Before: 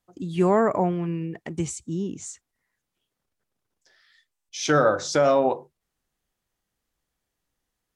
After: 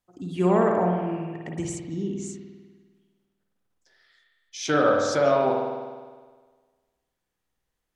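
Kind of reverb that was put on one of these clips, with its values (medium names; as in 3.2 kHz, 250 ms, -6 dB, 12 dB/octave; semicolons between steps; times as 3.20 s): spring tank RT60 1.5 s, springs 50 ms, chirp 30 ms, DRR 0 dB; trim -3.5 dB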